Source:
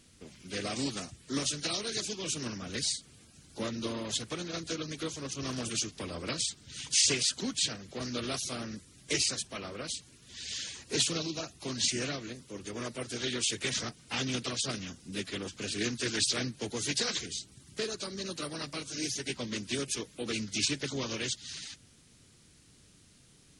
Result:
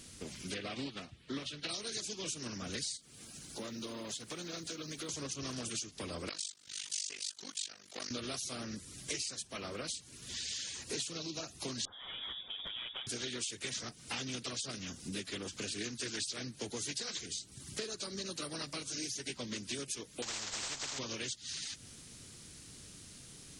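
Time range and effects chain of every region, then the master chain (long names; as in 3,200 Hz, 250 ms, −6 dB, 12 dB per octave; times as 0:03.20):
0:00.54–0:01.69: high shelf with overshoot 4,800 Hz −13.5 dB, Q 1.5 + expander for the loud parts, over −49 dBFS
0:02.97–0:05.09: downward compressor 2 to 1, threshold −51 dBFS + log-companded quantiser 8 bits + parametric band 79 Hz −9 dB 0.82 octaves
0:06.29–0:08.11: high-pass filter 980 Hz 6 dB per octave + amplitude modulation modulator 49 Hz, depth 85%
0:11.85–0:13.07: voice inversion scrambler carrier 3,600 Hz + downward compressor 4 to 1, threshold −44 dBFS
0:20.22–0:20.99: variable-slope delta modulation 32 kbit/s + every bin compressed towards the loudest bin 10 to 1
whole clip: bass and treble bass −1 dB, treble +4 dB; downward compressor 5 to 1, threshold −45 dBFS; level +6 dB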